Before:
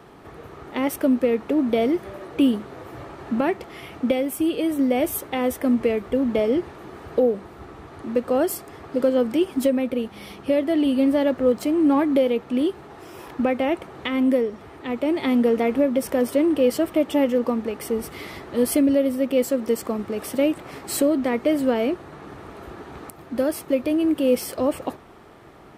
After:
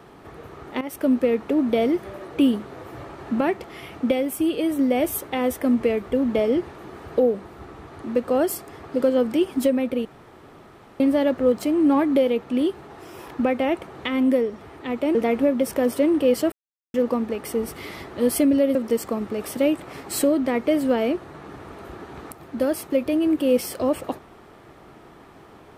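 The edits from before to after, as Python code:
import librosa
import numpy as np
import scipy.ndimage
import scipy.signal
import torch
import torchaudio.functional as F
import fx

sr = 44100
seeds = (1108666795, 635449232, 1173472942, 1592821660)

y = fx.edit(x, sr, fx.fade_in_from(start_s=0.81, length_s=0.3, floor_db=-14.5),
    fx.room_tone_fill(start_s=10.05, length_s=0.95),
    fx.cut(start_s=15.15, length_s=0.36),
    fx.silence(start_s=16.88, length_s=0.42),
    fx.cut(start_s=19.11, length_s=0.42), tone=tone)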